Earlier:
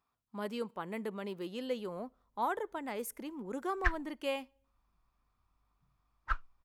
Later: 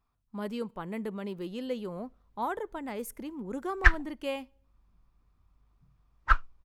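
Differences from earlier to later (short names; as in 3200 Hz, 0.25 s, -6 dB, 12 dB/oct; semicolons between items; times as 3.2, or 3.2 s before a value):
speech: remove HPF 330 Hz 6 dB/oct; background +11.0 dB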